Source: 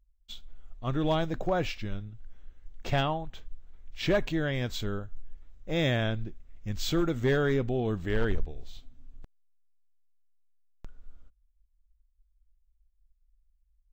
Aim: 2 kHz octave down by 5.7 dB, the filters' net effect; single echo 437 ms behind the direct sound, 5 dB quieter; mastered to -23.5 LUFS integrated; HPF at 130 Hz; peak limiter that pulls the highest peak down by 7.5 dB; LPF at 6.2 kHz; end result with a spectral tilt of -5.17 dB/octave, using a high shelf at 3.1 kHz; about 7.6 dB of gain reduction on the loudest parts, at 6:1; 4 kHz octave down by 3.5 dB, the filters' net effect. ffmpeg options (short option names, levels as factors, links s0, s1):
-af "highpass=130,lowpass=6200,equalizer=f=2000:t=o:g=-8.5,highshelf=f=3100:g=6,equalizer=f=4000:t=o:g=-5,acompressor=threshold=0.0282:ratio=6,alimiter=level_in=1.88:limit=0.0631:level=0:latency=1,volume=0.531,aecho=1:1:437:0.562,volume=6.31"